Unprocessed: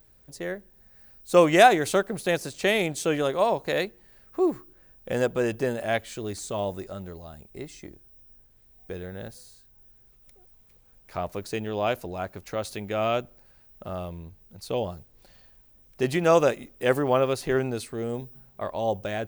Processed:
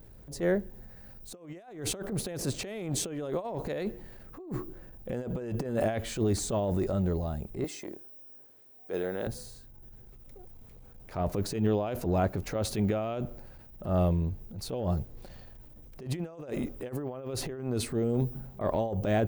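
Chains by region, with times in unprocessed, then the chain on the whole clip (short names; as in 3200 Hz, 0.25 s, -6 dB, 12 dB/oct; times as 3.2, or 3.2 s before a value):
7.64–9.27 HPF 370 Hz + high shelf 12000 Hz +4 dB
whole clip: tilt shelf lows +6 dB, about 880 Hz; negative-ratio compressor -28 dBFS, ratio -0.5; transient shaper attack -10 dB, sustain +3 dB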